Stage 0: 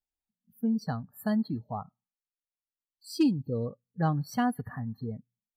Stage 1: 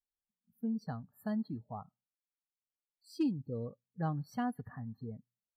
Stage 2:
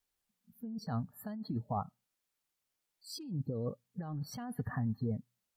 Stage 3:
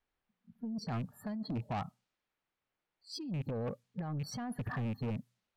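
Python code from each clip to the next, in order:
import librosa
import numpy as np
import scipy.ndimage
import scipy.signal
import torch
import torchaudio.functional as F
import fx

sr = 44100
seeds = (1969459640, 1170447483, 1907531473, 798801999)

y1 = fx.high_shelf(x, sr, hz=2800.0, db=-7.5)
y1 = F.gain(torch.from_numpy(y1), -7.5).numpy()
y2 = fx.over_compress(y1, sr, threshold_db=-42.0, ratio=-1.0)
y2 = fx.vibrato(y2, sr, rate_hz=8.3, depth_cents=31.0)
y2 = F.gain(torch.from_numpy(y2), 5.0).numpy()
y3 = fx.rattle_buzz(y2, sr, strikes_db=-36.0, level_db=-44.0)
y3 = fx.env_lowpass(y3, sr, base_hz=2300.0, full_db=-34.5)
y3 = 10.0 ** (-36.5 / 20.0) * np.tanh(y3 / 10.0 ** (-36.5 / 20.0))
y3 = F.gain(torch.from_numpy(y3), 4.5).numpy()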